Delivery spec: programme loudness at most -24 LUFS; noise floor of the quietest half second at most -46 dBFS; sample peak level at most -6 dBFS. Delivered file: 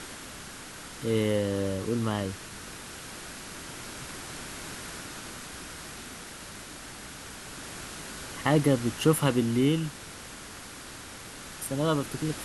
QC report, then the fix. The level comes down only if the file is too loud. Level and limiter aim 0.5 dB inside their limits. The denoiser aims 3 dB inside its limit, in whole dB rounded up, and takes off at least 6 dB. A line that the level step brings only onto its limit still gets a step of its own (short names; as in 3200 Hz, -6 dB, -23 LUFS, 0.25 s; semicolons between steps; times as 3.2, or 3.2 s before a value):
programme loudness -31.5 LUFS: OK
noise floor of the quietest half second -44 dBFS: fail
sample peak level -9.0 dBFS: OK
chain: denoiser 6 dB, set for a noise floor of -44 dBFS